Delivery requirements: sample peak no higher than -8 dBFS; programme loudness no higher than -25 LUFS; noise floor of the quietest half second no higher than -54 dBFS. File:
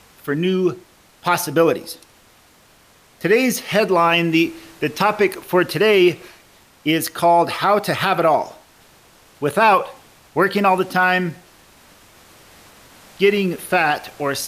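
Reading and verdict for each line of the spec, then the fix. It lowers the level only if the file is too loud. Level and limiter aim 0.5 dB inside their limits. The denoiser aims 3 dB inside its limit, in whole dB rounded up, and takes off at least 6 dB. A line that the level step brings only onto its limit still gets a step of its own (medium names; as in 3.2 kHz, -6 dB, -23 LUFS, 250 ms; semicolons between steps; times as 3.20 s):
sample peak -5.0 dBFS: fail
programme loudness -18.0 LUFS: fail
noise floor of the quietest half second -52 dBFS: fail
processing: trim -7.5 dB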